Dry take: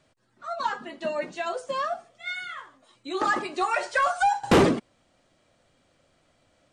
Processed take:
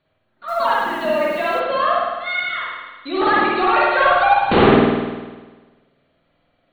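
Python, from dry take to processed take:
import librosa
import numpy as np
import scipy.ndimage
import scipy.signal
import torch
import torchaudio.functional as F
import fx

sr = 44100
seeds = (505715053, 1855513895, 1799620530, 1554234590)

y = fx.hum_notches(x, sr, base_hz=60, count=3)
y = fx.leveller(y, sr, passes=2)
y = fx.brickwall_lowpass(y, sr, high_hz=4500.0)
y = fx.quant_dither(y, sr, seeds[0], bits=8, dither='triangular', at=(0.48, 1.6))
y = fx.rev_spring(y, sr, rt60_s=1.3, pass_ms=(50,), chirp_ms=55, drr_db=-5.5)
y = y * 10.0 ** (-1.5 / 20.0)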